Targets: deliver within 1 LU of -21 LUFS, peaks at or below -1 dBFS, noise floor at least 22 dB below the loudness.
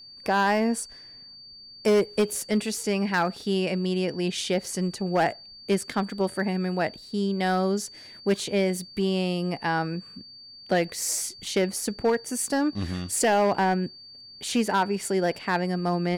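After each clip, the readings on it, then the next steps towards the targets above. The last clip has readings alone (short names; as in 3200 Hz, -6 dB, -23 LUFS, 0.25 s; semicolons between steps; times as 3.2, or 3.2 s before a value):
clipped 0.9%; flat tops at -16.0 dBFS; steady tone 4600 Hz; tone level -44 dBFS; loudness -26.0 LUFS; peak -16.0 dBFS; loudness target -21.0 LUFS
-> clip repair -16 dBFS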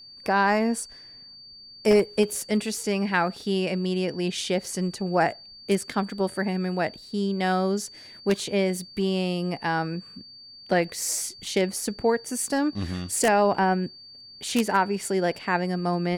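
clipped 0.0%; steady tone 4600 Hz; tone level -44 dBFS
-> notch 4600 Hz, Q 30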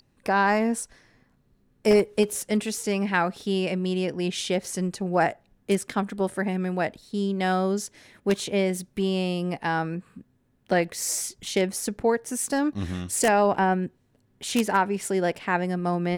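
steady tone none; loudness -25.5 LUFS; peak -7.0 dBFS; loudness target -21.0 LUFS
-> gain +4.5 dB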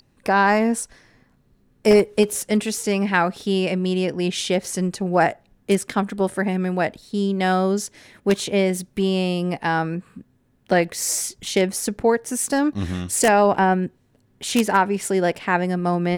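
loudness -21.0 LUFS; peak -2.5 dBFS; noise floor -61 dBFS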